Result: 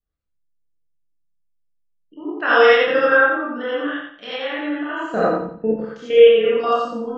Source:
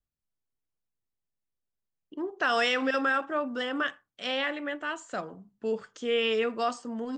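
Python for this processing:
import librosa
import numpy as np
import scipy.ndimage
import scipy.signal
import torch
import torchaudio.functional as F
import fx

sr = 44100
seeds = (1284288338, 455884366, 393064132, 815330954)

y = fx.spec_gate(x, sr, threshold_db=-30, keep='strong')
y = fx.peak_eq(y, sr, hz=320.0, db=10.5, octaves=2.5, at=(4.94, 5.7), fade=0.02)
y = fx.level_steps(y, sr, step_db=13)
y = fx.air_absorb(y, sr, metres=160.0)
y = fx.doubler(y, sr, ms=28.0, db=-3.0)
y = fx.echo_feedback(y, sr, ms=88, feedback_pct=31, wet_db=-5.0)
y = fx.rev_gated(y, sr, seeds[0], gate_ms=100, shape='rising', drr_db=-6.5)
y = F.gain(torch.from_numpy(y), 4.0).numpy()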